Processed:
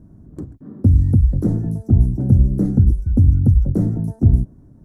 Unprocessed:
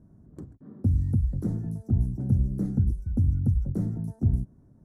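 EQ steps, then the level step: dynamic EQ 540 Hz, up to +5 dB, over -46 dBFS, Q 1.1; low shelf 86 Hz +6 dB; bell 300 Hz +4 dB 0.39 oct; +7.5 dB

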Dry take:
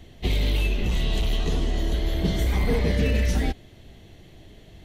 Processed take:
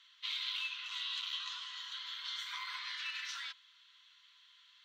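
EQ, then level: running mean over 4 samples; rippled Chebyshev high-pass 980 Hz, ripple 9 dB; 0.0 dB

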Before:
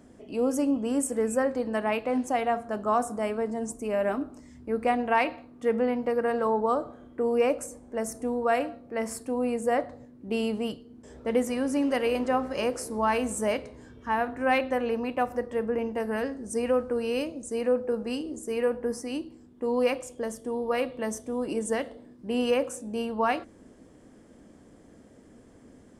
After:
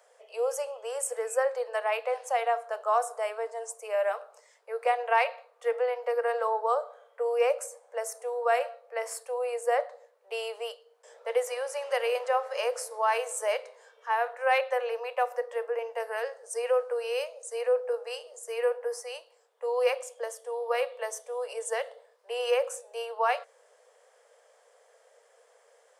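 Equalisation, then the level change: steep high-pass 460 Hz 96 dB/oct; 0.0 dB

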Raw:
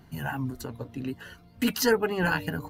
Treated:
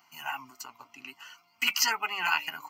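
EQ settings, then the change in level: HPF 1000 Hz 12 dB/oct; fixed phaser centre 2500 Hz, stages 8; dynamic EQ 2200 Hz, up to +7 dB, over -52 dBFS, Q 1.5; +5.0 dB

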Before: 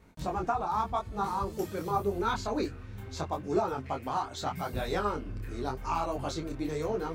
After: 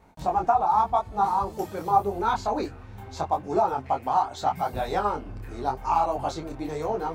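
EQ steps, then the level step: bell 800 Hz +12 dB 0.74 oct; 0.0 dB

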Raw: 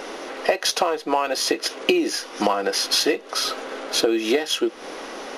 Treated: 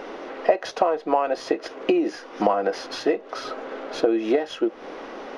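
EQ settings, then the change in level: dynamic EQ 650 Hz, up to +5 dB, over -35 dBFS, Q 2.4; dynamic EQ 3600 Hz, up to -5 dB, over -35 dBFS, Q 1; tape spacing loss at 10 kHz 25 dB; 0.0 dB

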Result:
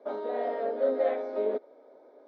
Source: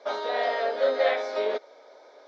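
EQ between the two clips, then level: band-pass 230 Hz, Q 1.6; +7.5 dB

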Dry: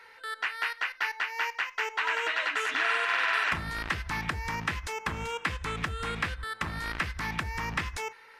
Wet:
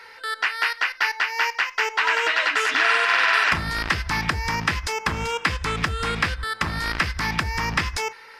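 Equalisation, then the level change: bell 5000 Hz +8 dB 0.34 oct; +8.0 dB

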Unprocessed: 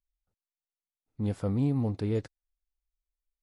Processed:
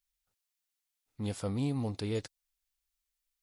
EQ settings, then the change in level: tilt shelf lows -8 dB; dynamic EQ 1700 Hz, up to -6 dB, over -56 dBFS, Q 1; +2.0 dB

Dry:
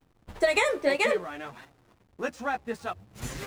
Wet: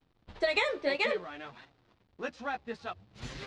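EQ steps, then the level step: synth low-pass 4200 Hz, resonance Q 1.8; -6.0 dB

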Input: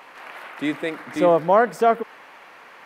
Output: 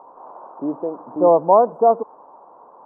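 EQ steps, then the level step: elliptic low-pass 1000 Hz, stop band 50 dB; low shelf 320 Hz -11 dB; +6.5 dB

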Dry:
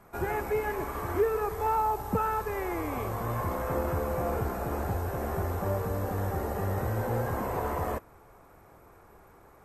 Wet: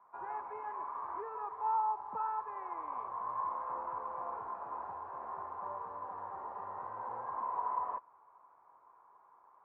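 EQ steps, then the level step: band-pass 1000 Hz, Q 9.8; air absorption 200 m; +5.5 dB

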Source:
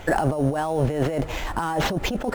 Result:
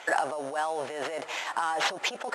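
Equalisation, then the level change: HPF 800 Hz 12 dB/oct; LPF 10000 Hz 24 dB/oct; 0.0 dB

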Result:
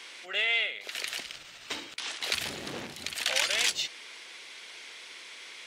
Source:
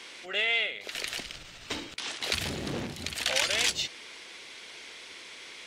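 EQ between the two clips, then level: tilt +3.5 dB/oct; high shelf 3200 Hz -12 dB; 0.0 dB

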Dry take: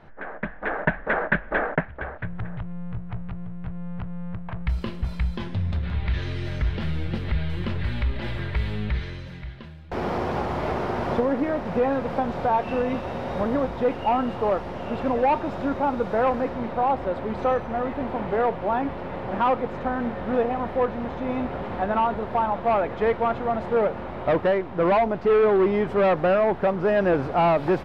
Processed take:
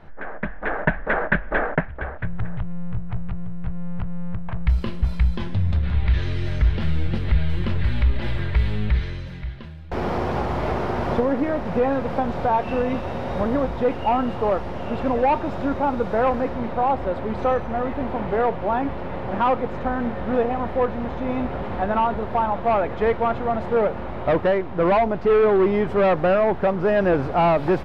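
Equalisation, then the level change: low shelf 69 Hz +8.5 dB; +1.5 dB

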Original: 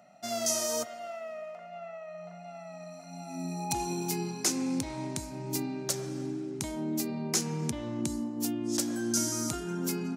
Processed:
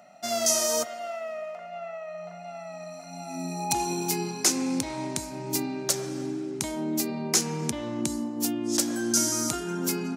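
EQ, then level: low shelf 180 Hz -9.5 dB; +6.0 dB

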